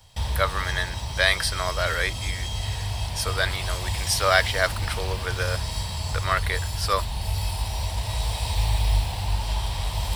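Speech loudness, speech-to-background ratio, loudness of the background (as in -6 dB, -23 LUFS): -26.0 LUFS, 3.0 dB, -29.0 LUFS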